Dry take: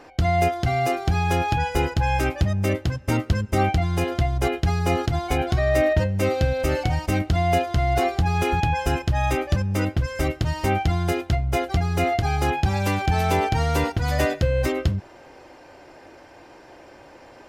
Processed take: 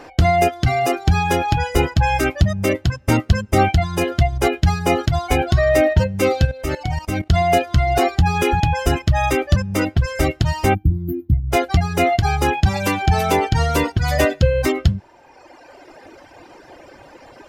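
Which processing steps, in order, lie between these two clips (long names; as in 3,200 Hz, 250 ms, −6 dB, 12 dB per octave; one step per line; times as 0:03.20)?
0:10.75–0:11.51: gain on a spectral selection 360–12,000 Hz −29 dB
reverb reduction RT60 1.6 s
0:06.45–0:07.30: output level in coarse steps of 14 dB
level +7 dB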